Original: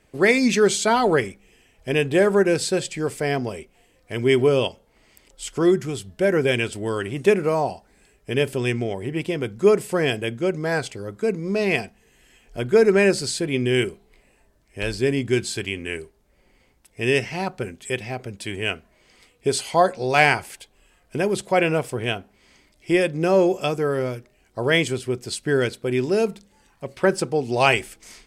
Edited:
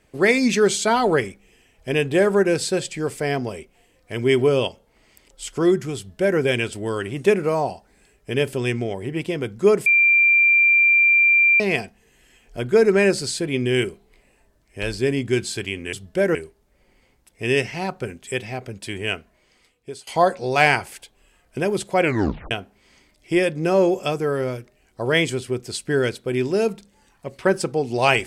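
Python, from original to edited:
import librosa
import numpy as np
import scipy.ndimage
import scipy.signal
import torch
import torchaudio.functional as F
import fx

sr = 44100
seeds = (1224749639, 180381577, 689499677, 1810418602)

y = fx.edit(x, sr, fx.duplicate(start_s=5.97, length_s=0.42, to_s=15.93),
    fx.bleep(start_s=9.86, length_s=1.74, hz=2370.0, db=-12.0),
    fx.fade_out_to(start_s=18.71, length_s=0.94, floor_db=-23.0),
    fx.tape_stop(start_s=21.61, length_s=0.48), tone=tone)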